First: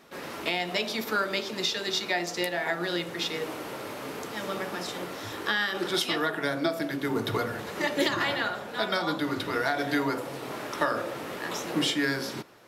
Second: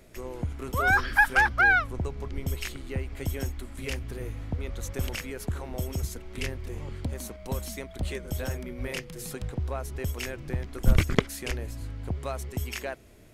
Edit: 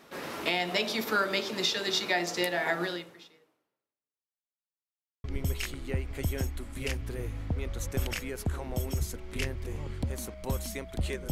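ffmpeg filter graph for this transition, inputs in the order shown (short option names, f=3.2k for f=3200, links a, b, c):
-filter_complex "[0:a]apad=whole_dur=11.31,atrim=end=11.31,asplit=2[a][b];[a]atrim=end=4.65,asetpts=PTS-STARTPTS,afade=t=out:st=2.83:d=1.82:c=exp[c];[b]atrim=start=4.65:end=5.24,asetpts=PTS-STARTPTS,volume=0[d];[1:a]atrim=start=2.26:end=8.33,asetpts=PTS-STARTPTS,afade=t=in:d=0.004:c=hsin[e];[c][d][e]concat=n=3:v=0:a=1"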